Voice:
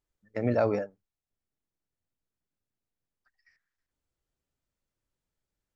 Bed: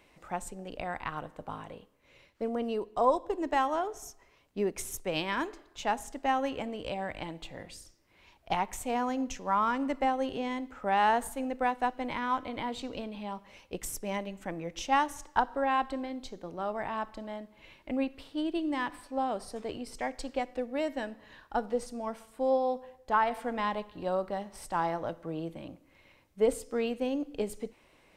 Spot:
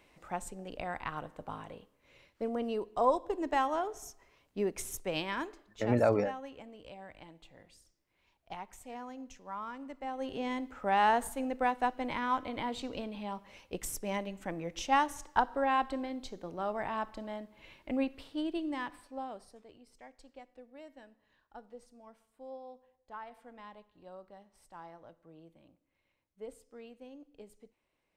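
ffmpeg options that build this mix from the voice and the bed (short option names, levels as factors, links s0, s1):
-filter_complex "[0:a]adelay=5450,volume=0.891[s0];[1:a]volume=3.35,afade=t=out:st=5.06:d=0.98:silence=0.266073,afade=t=in:st=10.03:d=0.47:silence=0.237137,afade=t=out:st=18.11:d=1.55:silence=0.125893[s1];[s0][s1]amix=inputs=2:normalize=0"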